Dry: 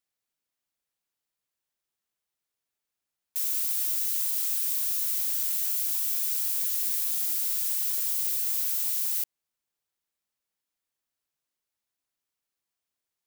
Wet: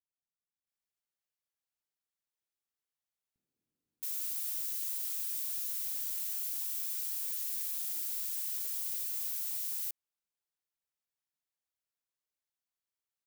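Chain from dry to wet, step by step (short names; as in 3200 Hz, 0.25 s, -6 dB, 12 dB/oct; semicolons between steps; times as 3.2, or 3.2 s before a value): bands offset in time lows, highs 0.67 s, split 280 Hz; gain -8.5 dB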